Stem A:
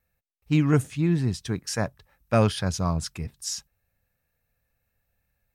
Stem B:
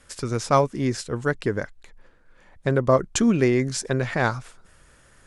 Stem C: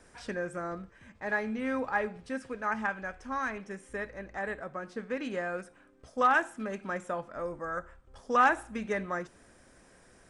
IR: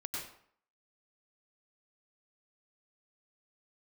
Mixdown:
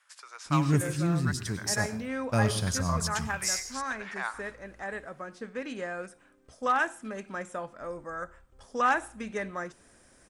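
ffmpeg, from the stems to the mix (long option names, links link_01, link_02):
-filter_complex "[0:a]bass=frequency=250:gain=5,treble=frequency=4000:gain=13,agate=range=-23dB:threshold=-47dB:ratio=16:detection=peak,volume=-11dB,asplit=2[link_01][link_02];[link_02]volume=-6dB[link_03];[1:a]highpass=frequency=920:width=0.5412,highpass=frequency=920:width=1.3066,highshelf=frequency=3100:gain=-8,volume=-7.5dB,asplit=2[link_04][link_05];[link_05]volume=-14dB[link_06];[2:a]highshelf=frequency=4600:gain=7.5,adelay=450,volume=-2dB[link_07];[3:a]atrim=start_sample=2205[link_08];[link_03][link_06]amix=inputs=2:normalize=0[link_09];[link_09][link_08]afir=irnorm=-1:irlink=0[link_10];[link_01][link_04][link_07][link_10]amix=inputs=4:normalize=0"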